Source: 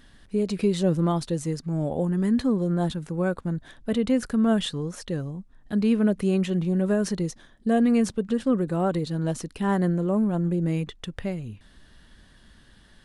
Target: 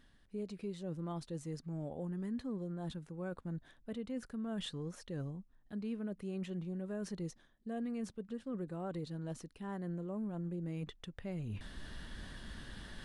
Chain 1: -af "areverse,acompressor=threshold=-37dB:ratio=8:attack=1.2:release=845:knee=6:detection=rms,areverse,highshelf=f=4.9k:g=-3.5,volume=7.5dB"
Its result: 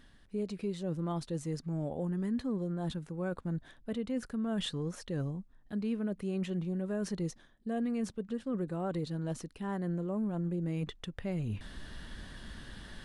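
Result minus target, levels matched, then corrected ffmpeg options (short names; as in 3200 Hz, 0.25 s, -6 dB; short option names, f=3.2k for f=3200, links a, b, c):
compressor: peak gain reduction -6 dB
-af "areverse,acompressor=threshold=-44dB:ratio=8:attack=1.2:release=845:knee=6:detection=rms,areverse,highshelf=f=4.9k:g=-3.5,volume=7.5dB"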